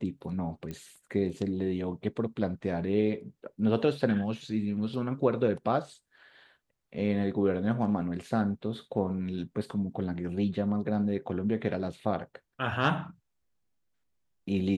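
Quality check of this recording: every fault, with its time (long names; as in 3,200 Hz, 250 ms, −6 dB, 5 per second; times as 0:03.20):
0:00.71: click −25 dBFS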